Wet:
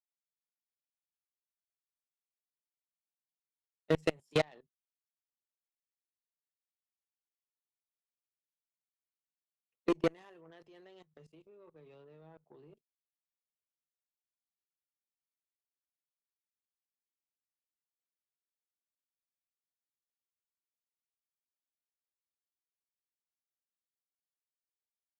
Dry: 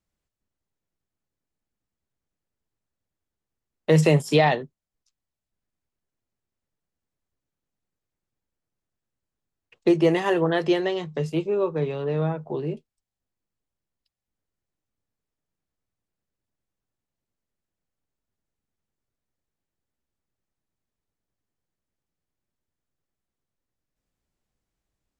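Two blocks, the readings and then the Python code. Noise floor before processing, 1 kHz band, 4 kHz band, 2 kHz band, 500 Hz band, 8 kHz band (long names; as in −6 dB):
below −85 dBFS, −18.0 dB, −13.0 dB, −14.5 dB, −14.5 dB, can't be measured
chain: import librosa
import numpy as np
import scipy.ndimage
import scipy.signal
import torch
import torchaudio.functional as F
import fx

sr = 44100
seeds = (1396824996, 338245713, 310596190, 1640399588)

y = fx.highpass(x, sr, hz=180.0, slope=6)
y = fx.level_steps(y, sr, step_db=17)
y = fx.cheby_harmonics(y, sr, harmonics=(3, 6, 7), levels_db=(-25, -42, -20), full_scale_db=-7.5)
y = F.gain(torch.from_numpy(y), -7.0).numpy()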